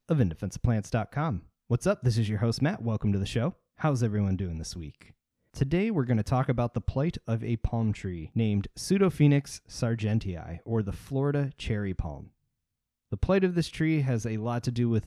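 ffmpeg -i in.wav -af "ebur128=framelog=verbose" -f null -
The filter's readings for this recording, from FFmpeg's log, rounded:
Integrated loudness:
  I:         -28.8 LUFS
  Threshold: -39.1 LUFS
Loudness range:
  LRA:         3.0 LU
  Threshold: -49.3 LUFS
  LRA low:   -31.0 LUFS
  LRA high:  -28.0 LUFS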